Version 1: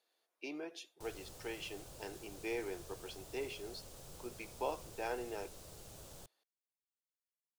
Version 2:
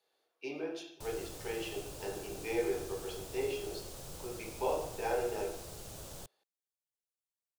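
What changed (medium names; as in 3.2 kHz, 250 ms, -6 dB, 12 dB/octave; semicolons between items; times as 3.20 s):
background +6.5 dB; reverb: on, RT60 0.65 s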